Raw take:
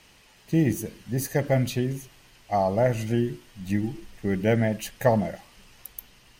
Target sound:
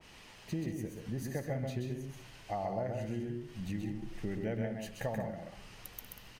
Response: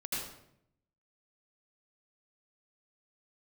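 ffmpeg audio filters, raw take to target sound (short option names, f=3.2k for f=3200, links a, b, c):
-filter_complex "[0:a]highshelf=f=8.5k:g=-8.5,acompressor=threshold=-38dB:ratio=4,aecho=1:1:131.2|189.5:0.631|0.282,asplit=2[a][b];[1:a]atrim=start_sample=2205[c];[b][c]afir=irnorm=-1:irlink=0,volume=-19.5dB[d];[a][d]amix=inputs=2:normalize=0,adynamicequalizer=threshold=0.00178:dfrequency=1800:dqfactor=0.7:tfrequency=1800:tqfactor=0.7:attack=5:release=100:ratio=0.375:range=2.5:mode=cutabove:tftype=highshelf"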